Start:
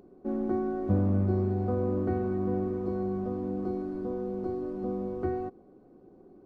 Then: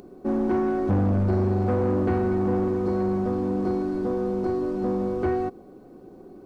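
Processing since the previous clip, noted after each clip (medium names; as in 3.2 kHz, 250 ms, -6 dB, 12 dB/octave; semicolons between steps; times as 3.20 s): treble shelf 2 kHz +9 dB; saturation -26 dBFS, distortion -12 dB; trim +8.5 dB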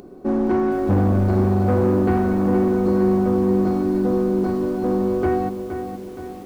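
bit-crushed delay 470 ms, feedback 55%, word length 8-bit, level -8.5 dB; trim +4 dB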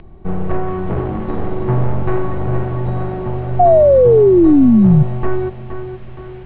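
painted sound fall, 3.59–5.03 s, 510–1100 Hz -16 dBFS; mistuned SSB -370 Hz 360–3500 Hz; trim +7.5 dB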